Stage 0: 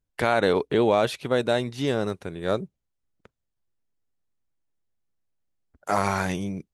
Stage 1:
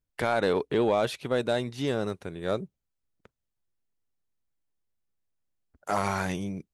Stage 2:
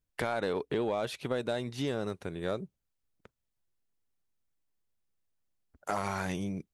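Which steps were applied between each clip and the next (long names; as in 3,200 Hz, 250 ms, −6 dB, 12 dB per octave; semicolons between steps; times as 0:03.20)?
soft clipping −10 dBFS, distortion −21 dB; level −3 dB
downward compressor 3 to 1, threshold −30 dBFS, peak gain reduction 7.5 dB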